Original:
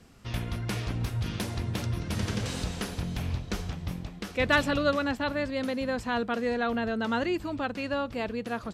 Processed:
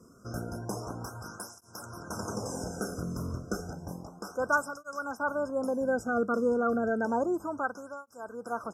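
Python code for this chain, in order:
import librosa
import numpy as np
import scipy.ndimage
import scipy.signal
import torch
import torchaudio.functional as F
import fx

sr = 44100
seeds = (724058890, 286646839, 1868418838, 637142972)

y = fx.brickwall_bandstop(x, sr, low_hz=1600.0, high_hz=5000.0)
y = fx.flanger_cancel(y, sr, hz=0.31, depth_ms=1.3)
y = F.gain(torch.from_numpy(y), 3.5).numpy()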